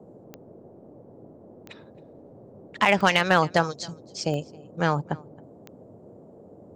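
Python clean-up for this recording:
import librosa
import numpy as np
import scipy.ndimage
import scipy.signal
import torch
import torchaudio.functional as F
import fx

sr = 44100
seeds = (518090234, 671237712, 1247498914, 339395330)

y = fx.fix_declip(x, sr, threshold_db=-7.5)
y = fx.fix_declick_ar(y, sr, threshold=10.0)
y = fx.noise_reduce(y, sr, print_start_s=0.68, print_end_s=1.18, reduce_db=20.0)
y = fx.fix_echo_inverse(y, sr, delay_ms=270, level_db=-23.5)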